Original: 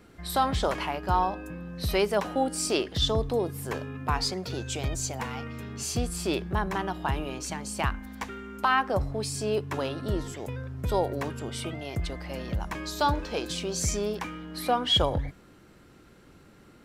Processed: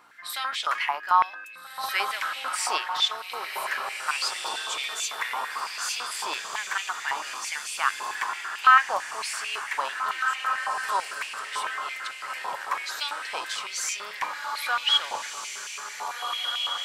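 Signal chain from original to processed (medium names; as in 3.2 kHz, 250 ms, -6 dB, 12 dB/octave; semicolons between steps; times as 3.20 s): hum 60 Hz, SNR 12 dB; echo that smears into a reverb 1738 ms, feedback 43%, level -4 dB; step-sequenced high-pass 9 Hz 990–2500 Hz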